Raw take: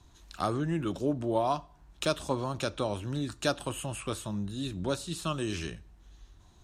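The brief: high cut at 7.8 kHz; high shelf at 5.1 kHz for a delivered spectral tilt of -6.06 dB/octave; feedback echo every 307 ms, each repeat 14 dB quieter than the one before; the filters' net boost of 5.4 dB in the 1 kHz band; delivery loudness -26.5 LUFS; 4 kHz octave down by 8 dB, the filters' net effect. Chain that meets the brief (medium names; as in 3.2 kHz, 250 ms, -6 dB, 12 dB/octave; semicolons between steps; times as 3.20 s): low-pass 7.8 kHz; peaking EQ 1 kHz +7.5 dB; peaking EQ 4 kHz -8 dB; treble shelf 5.1 kHz -6 dB; feedback delay 307 ms, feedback 20%, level -14 dB; trim +4.5 dB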